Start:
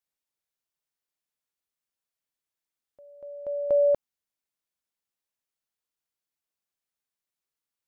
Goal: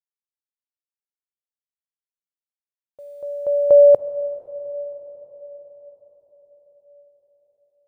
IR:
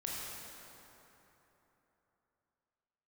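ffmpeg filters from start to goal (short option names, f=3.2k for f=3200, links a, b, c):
-filter_complex "[0:a]equalizer=f=125:t=o:w=1:g=8,equalizer=f=250:t=o:w=1:g=-3,equalizer=f=500:t=o:w=1:g=11,equalizer=f=1k:t=o:w=1:g=4,acrusher=bits=10:mix=0:aa=0.000001,asplit=2[a][b];[1:a]atrim=start_sample=2205,asetrate=25578,aresample=44100[c];[b][c]afir=irnorm=-1:irlink=0,volume=-17.5dB[d];[a][d]amix=inputs=2:normalize=0"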